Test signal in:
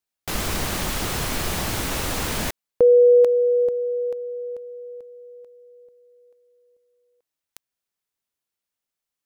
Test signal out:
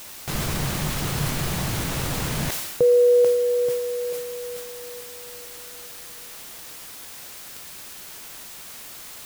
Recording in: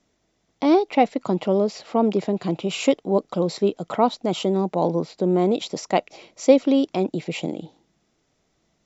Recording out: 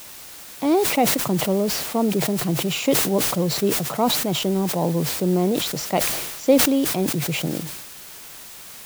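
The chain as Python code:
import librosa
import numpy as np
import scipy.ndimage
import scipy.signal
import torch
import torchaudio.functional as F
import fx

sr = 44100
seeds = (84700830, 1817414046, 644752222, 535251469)

y = fx.peak_eq(x, sr, hz=140.0, db=12.5, octaves=0.63)
y = fx.dmg_noise_colour(y, sr, seeds[0], colour='white', level_db=-37.0)
y = fx.sustainer(y, sr, db_per_s=42.0)
y = F.gain(torch.from_numpy(y), -3.0).numpy()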